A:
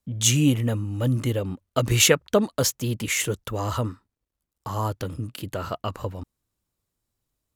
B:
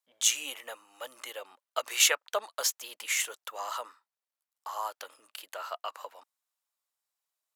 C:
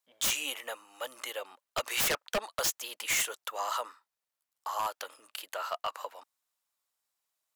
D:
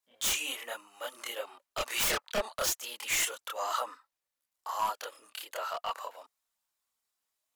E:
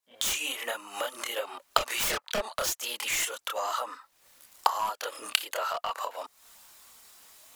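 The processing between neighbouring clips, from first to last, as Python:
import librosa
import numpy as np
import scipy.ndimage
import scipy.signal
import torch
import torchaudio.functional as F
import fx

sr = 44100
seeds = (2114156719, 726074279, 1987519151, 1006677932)

y1 = scipy.signal.sosfilt(scipy.signal.butter(4, 690.0, 'highpass', fs=sr, output='sos'), x)
y1 = y1 * librosa.db_to_amplitude(-4.0)
y2 = 10.0 ** (-25.5 / 20.0) * (np.abs((y1 / 10.0 ** (-25.5 / 20.0) + 3.0) % 4.0 - 2.0) - 1.0)
y2 = y2 * librosa.db_to_amplitude(3.0)
y3 = fx.chorus_voices(y2, sr, voices=6, hz=0.53, base_ms=27, depth_ms=2.8, mix_pct=55)
y3 = y3 * librosa.db_to_amplitude(3.0)
y4 = fx.recorder_agc(y3, sr, target_db=-23.0, rise_db_per_s=65.0, max_gain_db=30)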